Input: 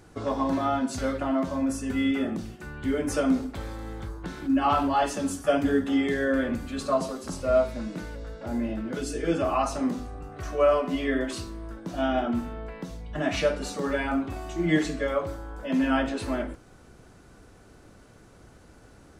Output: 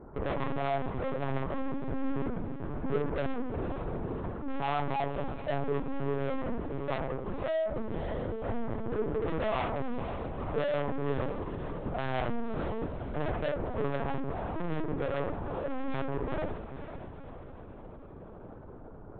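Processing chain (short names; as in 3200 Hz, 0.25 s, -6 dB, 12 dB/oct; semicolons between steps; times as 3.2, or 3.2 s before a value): LPF 1100 Hz 24 dB/oct; low shelf 140 Hz -4.5 dB; vocal rider within 5 dB 2 s; tube stage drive 34 dB, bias 0.3; diffused feedback echo 0.51 s, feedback 48%, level -10 dB; on a send at -8.5 dB: reverb RT60 0.45 s, pre-delay 3 ms; on the sum: LPC vocoder at 8 kHz pitch kept; gain +4 dB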